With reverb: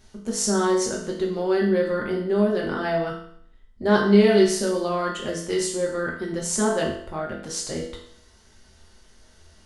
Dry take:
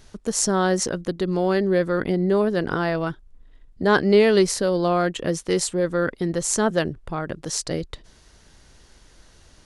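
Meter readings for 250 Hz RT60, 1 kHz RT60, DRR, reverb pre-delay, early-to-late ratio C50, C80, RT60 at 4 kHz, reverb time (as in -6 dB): 0.65 s, 0.65 s, -3.0 dB, 5 ms, 5.0 dB, 8.5 dB, 0.65 s, 0.65 s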